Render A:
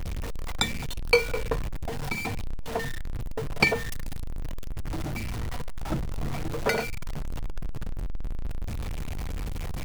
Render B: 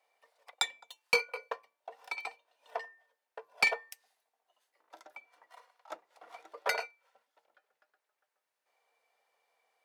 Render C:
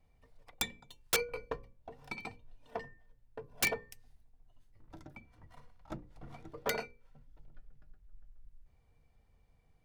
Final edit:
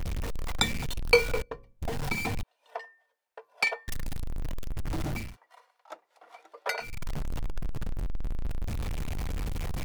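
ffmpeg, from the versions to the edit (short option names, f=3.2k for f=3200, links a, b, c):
-filter_complex "[1:a]asplit=2[a][b];[0:a]asplit=4[c][d][e][f];[c]atrim=end=1.422[g];[2:a]atrim=start=1.418:end=1.822[h];[d]atrim=start=1.818:end=2.432[i];[a]atrim=start=2.428:end=3.882[j];[e]atrim=start=3.878:end=5.37[k];[b]atrim=start=5.13:end=7.03[l];[f]atrim=start=6.79[m];[g][h]acrossfade=d=0.004:c1=hsin:c2=hsin[n];[n][i]acrossfade=d=0.004:c1=hsin:c2=hsin[o];[o][j]acrossfade=d=0.004:c1=hsin:c2=hsin[p];[p][k]acrossfade=d=0.004:c1=hsin:c2=hsin[q];[q][l]acrossfade=d=0.24:c1=tri:c2=tri[r];[r][m]acrossfade=d=0.24:c1=tri:c2=tri"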